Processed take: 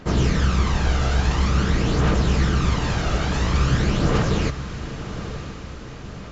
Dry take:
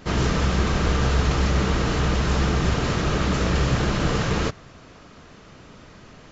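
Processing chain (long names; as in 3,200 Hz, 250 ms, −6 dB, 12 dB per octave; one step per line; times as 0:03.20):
phase shifter 0.48 Hz, delay 1.5 ms, feedback 45%
feedback delay with all-pass diffusion 1,021 ms, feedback 52%, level −11.5 dB
level −1.5 dB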